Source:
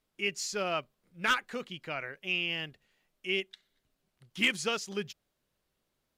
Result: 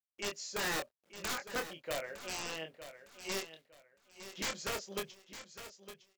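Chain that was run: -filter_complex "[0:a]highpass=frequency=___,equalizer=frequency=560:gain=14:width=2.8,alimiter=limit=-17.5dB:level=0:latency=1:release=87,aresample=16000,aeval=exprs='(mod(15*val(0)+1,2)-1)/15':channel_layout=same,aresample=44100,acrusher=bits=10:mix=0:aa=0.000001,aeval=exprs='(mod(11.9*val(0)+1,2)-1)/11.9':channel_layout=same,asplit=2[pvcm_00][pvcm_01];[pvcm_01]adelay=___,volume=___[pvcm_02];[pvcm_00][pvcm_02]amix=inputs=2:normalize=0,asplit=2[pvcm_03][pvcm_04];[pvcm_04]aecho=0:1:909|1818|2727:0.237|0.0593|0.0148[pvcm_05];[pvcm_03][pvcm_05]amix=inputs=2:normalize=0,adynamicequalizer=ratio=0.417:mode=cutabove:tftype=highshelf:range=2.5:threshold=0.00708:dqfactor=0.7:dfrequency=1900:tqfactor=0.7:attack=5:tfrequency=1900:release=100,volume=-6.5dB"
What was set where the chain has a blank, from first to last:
220, 25, -6dB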